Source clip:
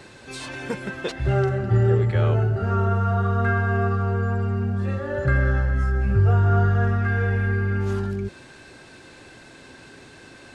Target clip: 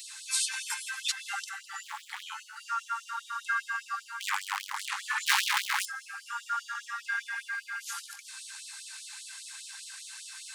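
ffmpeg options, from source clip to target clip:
-filter_complex "[0:a]bass=f=250:g=11,treble=f=4k:g=9,asettb=1/sr,asplit=3[a][b][c];[a]atrim=end=1.834[d];[b]atrim=start=1.83:end=2.23,asetpts=PTS-STARTPTS,afade=t=in:d=0.004:c=qsin,afade=t=out:st=0.396:d=0.004:c=qsin,volume=17dB,asoftclip=hard,volume=-17dB[e];[c]atrim=start=2.226[f];[d][e]acrossfade=d=0.004:c1=hsin:c2=qsin[g];[g][f]acrossfade=d=0.004:c1=qsin:c2=hsin,asplit=3[h][i][j];[h]afade=t=out:st=4.2:d=0.02[k];[i]aeval=exprs='0.355*(cos(1*acos(clip(val(0)/0.355,-1,1)))-cos(1*PI/2))+0.141*(cos(5*acos(clip(val(0)/0.355,-1,1)))-cos(5*PI/2))':c=same,afade=t=in:st=4.2:d=0.02,afade=t=out:st=5.84:d=0.02[l];[j]afade=t=in:st=5.84:d=0.02[m];[k][l][m]amix=inputs=3:normalize=0,acrossover=split=1500[n][o];[o]crystalizer=i=1.5:c=0[p];[n][p]amix=inputs=2:normalize=0,afftfilt=real='re*gte(b*sr/1024,770*pow(3000/770,0.5+0.5*sin(2*PI*5*pts/sr)))':imag='im*gte(b*sr/1024,770*pow(3000/770,0.5+0.5*sin(2*PI*5*pts/sr)))':win_size=1024:overlap=0.75,volume=-1.5dB"

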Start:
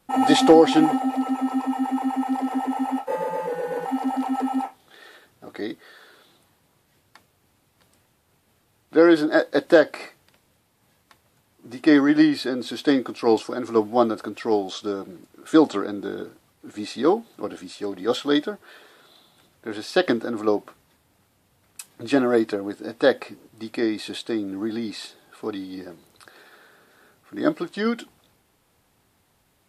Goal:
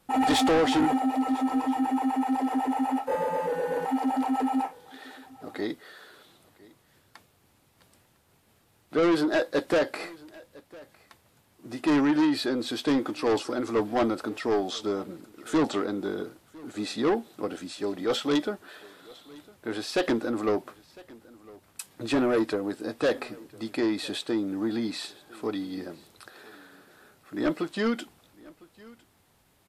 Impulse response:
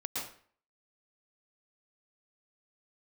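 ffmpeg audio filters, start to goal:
-af "asoftclip=type=tanh:threshold=-19dB,aecho=1:1:1005:0.0708"

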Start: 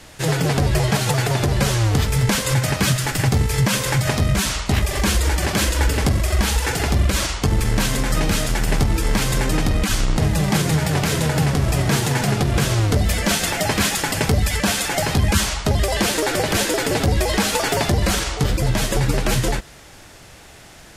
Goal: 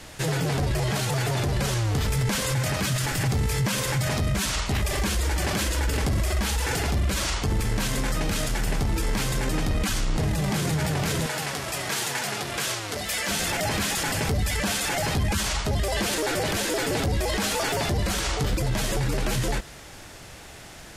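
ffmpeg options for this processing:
-filter_complex "[0:a]asettb=1/sr,asplit=3[a][b][c];[a]atrim=end=11.264[d];[b]atrim=start=11.26:end=13.29,asetpts=PTS-STARTPTS,afade=t=in:d=0.004:c=qsin,afade=t=out:st=2.026:d=0.004:c=qsin,highpass=f=1.1k:p=1[e];[c]atrim=start=13.286[f];[d][e]acrossfade=d=0.004:c1=hsin:c2=qsin[g];[g][f]acrossfade=d=0.004:c1=qsin:c2=hsin,alimiter=limit=-17.5dB:level=0:latency=1:release=16"

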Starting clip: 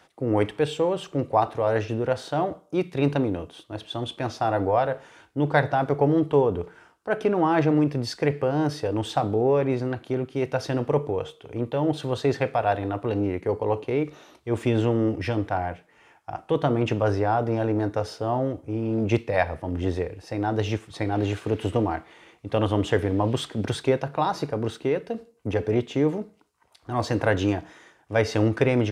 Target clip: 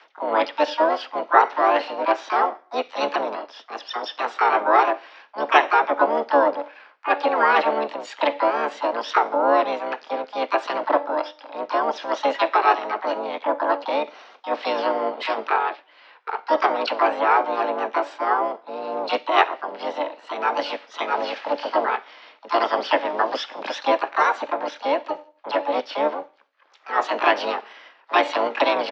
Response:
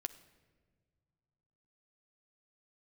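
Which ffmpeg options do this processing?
-filter_complex "[0:a]highpass=f=440:t=q:w=0.5412,highpass=f=440:t=q:w=1.307,lowpass=f=3.4k:t=q:w=0.5176,lowpass=f=3.4k:t=q:w=0.7071,lowpass=f=3.4k:t=q:w=1.932,afreqshift=140,asplit=4[a][b][c][d];[b]asetrate=22050,aresample=44100,atempo=2,volume=-10dB[e];[c]asetrate=37084,aresample=44100,atempo=1.18921,volume=-11dB[f];[d]asetrate=66075,aresample=44100,atempo=0.66742,volume=-3dB[g];[a][e][f][g]amix=inputs=4:normalize=0,volume=4dB"

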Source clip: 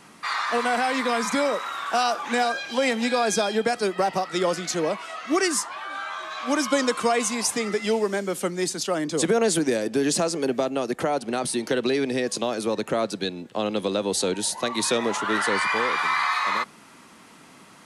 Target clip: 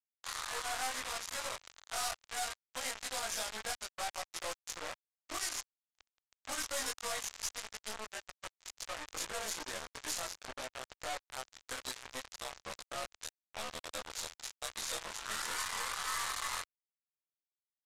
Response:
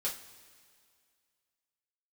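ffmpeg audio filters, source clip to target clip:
-af "afftfilt=real='re':imag='-im':win_size=2048:overlap=0.75,equalizer=f=160:t=o:w=0.33:g=-11,equalizer=f=400:t=o:w=0.33:g=-11,equalizer=f=2.5k:t=o:w=0.33:g=-11,aecho=1:1:821|1642:0.0631|0.0208,aresample=16000,acrusher=bits=3:mix=0:aa=0.5,aresample=44100,acontrast=35,aeval=exprs='(tanh(79.4*val(0)+0.25)-tanh(0.25))/79.4':c=same,equalizer=f=220:t=o:w=2.3:g=-13,volume=7.5dB" -ar 32000 -c:a aac -b:a 96k

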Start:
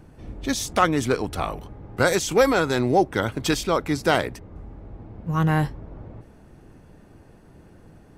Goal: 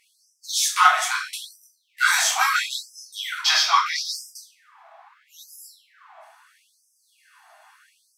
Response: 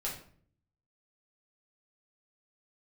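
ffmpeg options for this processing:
-filter_complex "[0:a]asettb=1/sr,asplit=3[a][b][c];[a]atrim=end=3.414[d];[b]atrim=start=3.41:end=4.11,asetpts=PTS-STARTPTS,afade=t=in:d=0.004:c=qsin,afade=t=out:st=0.696:d=0.004:c=qsin,highshelf=f=6.7k:t=q:w=3:g=-8[e];[c]atrim=start=4.106[f];[d][e]acrossfade=d=0.004:c1=hsin:c2=qsin[g];[g][f]acrossfade=d=0.004:c1=qsin:c2=hsin,acontrast=36,asoftclip=type=tanh:threshold=-4.5dB[h];[1:a]atrim=start_sample=2205,asetrate=35721,aresample=44100[i];[h][i]afir=irnorm=-1:irlink=0,afftfilt=real='re*gte(b*sr/1024,610*pow(5000/610,0.5+0.5*sin(2*PI*0.76*pts/sr)))':imag='im*gte(b*sr/1024,610*pow(5000/610,0.5+0.5*sin(2*PI*0.76*pts/sr)))':win_size=1024:overlap=0.75"

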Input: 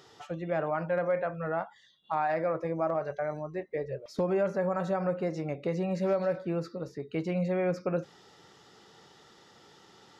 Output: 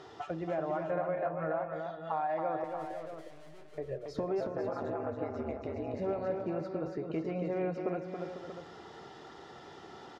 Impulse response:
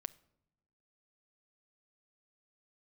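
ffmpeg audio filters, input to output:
-filter_complex "[0:a]lowpass=f=1.8k:p=1,equalizer=f=760:w=1.5:g=3.5,aecho=1:1:2.9:0.32,acompressor=threshold=-42dB:ratio=3,asettb=1/sr,asplit=3[a][b][c];[a]atrim=end=2.644[d];[b]atrim=start=2.64:end=3.78,asetpts=PTS-STARTPTS,afade=t=in:d=0.004:c=qsin,afade=t=out:st=1.136:d=0.004:c=qsin,aeval=exprs='(tanh(1120*val(0)+0.45)-tanh(0.45))/1120':c=same[e];[c]atrim=start=3.776[f];[d][e]acrossfade=d=0.004:c1=hsin:c2=qsin[g];[g][f]acrossfade=d=0.004:c1=qsin:c2=hsin,asettb=1/sr,asplit=3[h][i][j];[h]atrim=end=4.404[k];[i]atrim=start=4.4:end=5.99,asetpts=PTS-STARTPTS,afade=t=in:d=0.004:c=qsin,afade=t=out:st=1.586:d=0.004:c=qsin,aeval=exprs='val(0)*sin(2*PI*70*n/s)':c=same[l];[j]atrim=start=5.986[m];[k][l]acrossfade=d=0.004:c1=hsin:c2=qsin[n];[n][m]acrossfade=d=0.004:c1=qsin:c2=hsin,aecho=1:1:277|498|635:0.531|0.266|0.299[o];[1:a]atrim=start_sample=2205,asetrate=22932,aresample=44100[p];[o][p]afir=irnorm=-1:irlink=0,volume=5.5dB"

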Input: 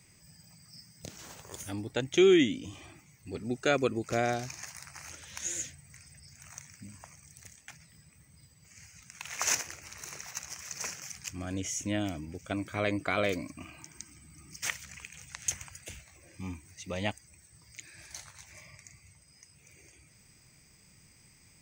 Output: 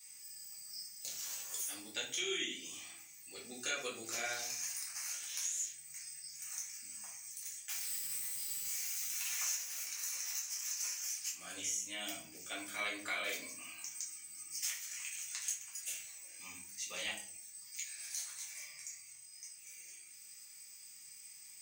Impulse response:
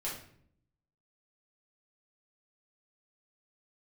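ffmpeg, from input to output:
-filter_complex "[0:a]asettb=1/sr,asplit=3[a][b][c];[a]atrim=end=7.694[d];[b]atrim=start=7.69:end=9.83,asetpts=PTS-STARTPTS,afade=t=in:d=0.004:c=qsin,afade=t=out:st=2.136:d=0.004:c=qsin,aeval=exprs='val(0)+0.5*0.0106*sgn(val(0))':c=same[e];[c]atrim=start=9.826[f];[d][e]acrossfade=d=0.004:c1=hsin:c2=qsin[g];[g][f]acrossfade=d=0.004:c1=qsin:c2=hsin,highpass=72,aderivative,acompressor=threshold=-43dB:ratio=10[h];[1:a]atrim=start_sample=2205,asetrate=57330,aresample=44100[i];[h][i]afir=irnorm=-1:irlink=0,volume=10dB"

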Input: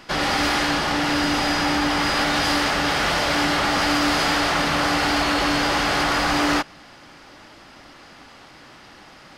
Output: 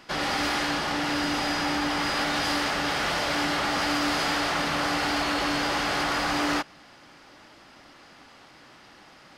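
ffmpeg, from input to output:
-af "lowshelf=f=80:g=-6,volume=-5.5dB"

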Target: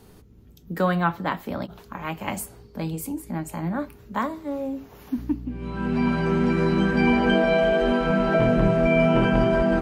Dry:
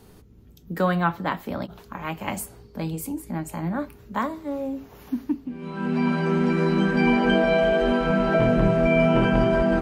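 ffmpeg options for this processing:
-filter_complex "[0:a]asettb=1/sr,asplit=3[a][b][c];[a]atrim=end=5.184[d];[b]atrim=start=5.18:end=7.28,asetpts=PTS-STARTPTS,afade=t=in:d=0.004:c=qsin,afade=t=out:st=2.096:d=0.004:c=qsin,aeval=exprs='val(0)+0.02*(sin(2*PI*60*n/s)+sin(2*PI*2*60*n/s)/2+sin(2*PI*3*60*n/s)/3+sin(2*PI*4*60*n/s)/4+sin(2*PI*5*60*n/s)/5)':c=same[e];[c]atrim=start=7.276[f];[d][e]acrossfade=d=0.004:c1=hsin:c2=qsin[g];[g][f]acrossfade=d=0.004:c1=qsin:c2=hsin"

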